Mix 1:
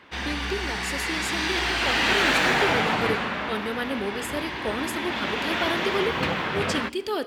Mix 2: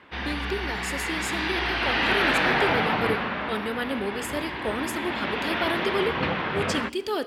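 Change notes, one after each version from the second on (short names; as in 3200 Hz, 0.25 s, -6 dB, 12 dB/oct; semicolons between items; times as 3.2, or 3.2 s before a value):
background: add running mean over 6 samples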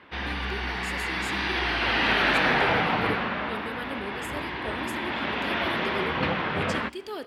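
speech -8.0 dB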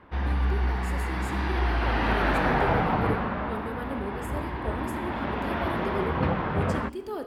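speech: send +6.5 dB; master: remove weighting filter D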